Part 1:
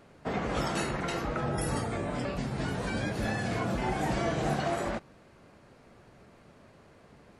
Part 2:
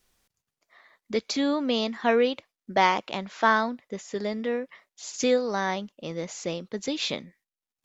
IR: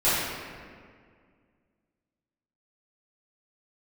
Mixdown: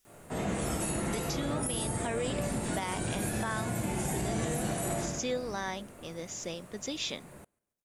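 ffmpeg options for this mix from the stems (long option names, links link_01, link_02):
-filter_complex "[0:a]acrossover=split=250|680|2300[link_01][link_02][link_03][link_04];[link_01]acompressor=threshold=-34dB:ratio=4[link_05];[link_02]acompressor=threshold=-40dB:ratio=4[link_06];[link_03]acompressor=threshold=-48dB:ratio=4[link_07];[link_04]acompressor=threshold=-45dB:ratio=4[link_08];[link_05][link_06][link_07][link_08]amix=inputs=4:normalize=0,aexciter=amount=7.6:drive=6.1:freq=7200,adelay=50,volume=-4dB,asplit=3[link_09][link_10][link_11];[link_10]volume=-9.5dB[link_12];[link_11]volume=-22dB[link_13];[1:a]highshelf=frequency=4000:gain=11,bandreject=frequency=4300:width=7,volume=-8.5dB[link_14];[2:a]atrim=start_sample=2205[link_15];[link_12][link_15]afir=irnorm=-1:irlink=0[link_16];[link_13]aecho=0:1:143|286|429|572|715|858:1|0.42|0.176|0.0741|0.0311|0.0131[link_17];[link_09][link_14][link_16][link_17]amix=inputs=4:normalize=0,alimiter=limit=-22.5dB:level=0:latency=1:release=138"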